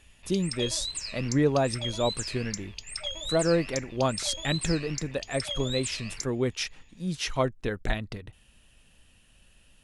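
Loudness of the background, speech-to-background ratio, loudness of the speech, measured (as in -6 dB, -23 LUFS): -35.0 LUFS, 5.5 dB, -29.5 LUFS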